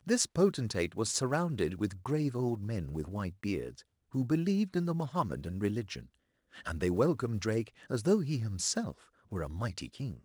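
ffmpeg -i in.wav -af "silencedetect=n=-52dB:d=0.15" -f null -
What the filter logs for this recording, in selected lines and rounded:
silence_start: 3.82
silence_end: 4.12 | silence_duration: 0.30
silence_start: 6.06
silence_end: 6.53 | silence_duration: 0.47
silence_start: 9.06
silence_end: 9.32 | silence_duration: 0.25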